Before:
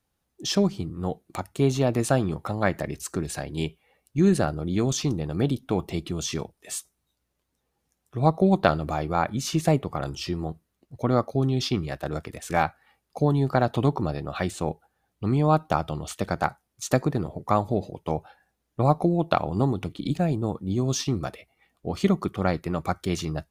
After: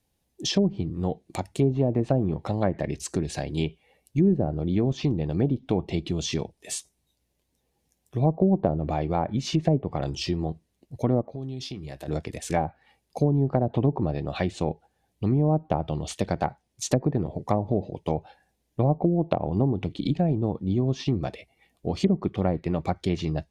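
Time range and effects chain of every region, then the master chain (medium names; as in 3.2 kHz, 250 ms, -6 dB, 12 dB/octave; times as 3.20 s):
11.21–12.08 s: compression 5:1, threshold -37 dBFS + doubling 15 ms -13 dB
whole clip: low-pass that closes with the level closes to 630 Hz, closed at -17 dBFS; peaking EQ 1.3 kHz -12 dB 0.63 oct; compression 1.5:1, threshold -27 dBFS; trim +3.5 dB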